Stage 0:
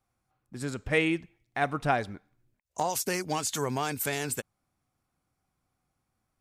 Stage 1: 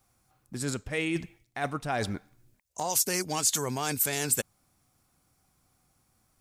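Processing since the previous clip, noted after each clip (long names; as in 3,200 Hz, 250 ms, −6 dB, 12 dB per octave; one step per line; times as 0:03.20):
reversed playback
downward compressor 6 to 1, threshold −36 dBFS, peak gain reduction 15 dB
reversed playback
bass and treble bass +1 dB, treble +8 dB
level +7.5 dB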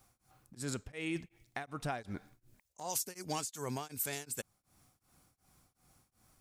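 downward compressor 6 to 1, threshold −36 dBFS, peak gain reduction 15 dB
tremolo along a rectified sine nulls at 2.7 Hz
level +3 dB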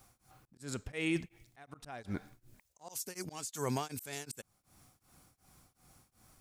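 volume swells 304 ms
level +4.5 dB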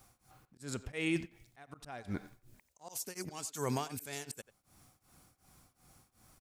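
far-end echo of a speakerphone 90 ms, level −15 dB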